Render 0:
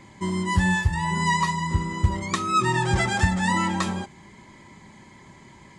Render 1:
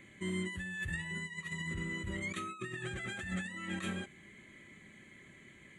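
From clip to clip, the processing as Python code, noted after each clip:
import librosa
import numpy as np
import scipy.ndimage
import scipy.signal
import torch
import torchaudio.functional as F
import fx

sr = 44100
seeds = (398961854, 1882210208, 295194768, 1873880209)

y = fx.low_shelf(x, sr, hz=280.0, db=-11.0)
y = fx.over_compress(y, sr, threshold_db=-31.0, ratio=-1.0)
y = fx.fixed_phaser(y, sr, hz=2200.0, stages=4)
y = F.gain(torch.from_numpy(y), -6.0).numpy()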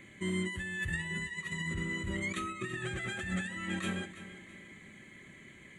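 y = fx.echo_feedback(x, sr, ms=331, feedback_pct=39, wet_db=-14)
y = F.gain(torch.from_numpy(y), 3.0).numpy()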